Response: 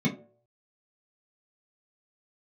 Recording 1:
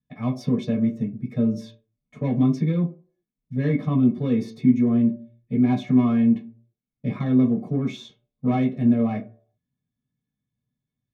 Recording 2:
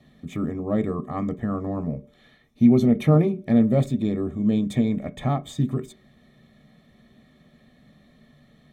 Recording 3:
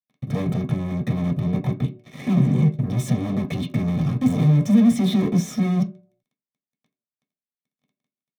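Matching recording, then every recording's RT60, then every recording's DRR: 1; 0.55 s, 0.55 s, 0.55 s; -5.5 dB, 9.5 dB, 1.0 dB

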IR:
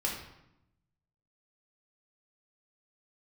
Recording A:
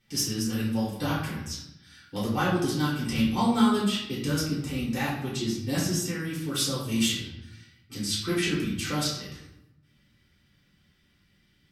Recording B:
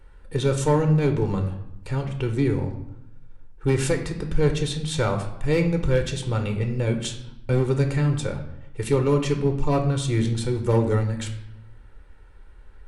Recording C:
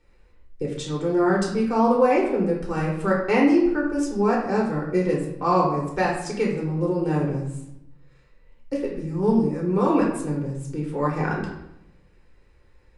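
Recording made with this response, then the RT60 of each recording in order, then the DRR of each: C; 0.85 s, 0.85 s, 0.85 s; -8.0 dB, 4.5 dB, -3.0 dB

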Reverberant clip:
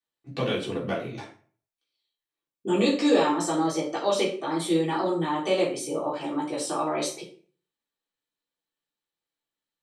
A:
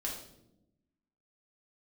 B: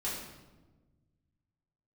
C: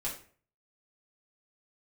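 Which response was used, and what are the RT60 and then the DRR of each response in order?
C; 0.85 s, 1.2 s, 0.45 s; -3.5 dB, -9.0 dB, -7.0 dB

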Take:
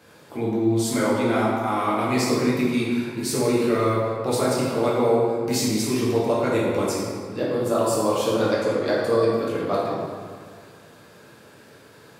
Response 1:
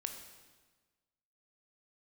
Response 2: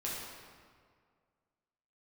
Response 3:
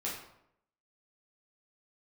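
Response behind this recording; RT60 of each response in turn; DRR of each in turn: 2; 1.3 s, 2.0 s, 0.75 s; 5.0 dB, -6.5 dB, -6.5 dB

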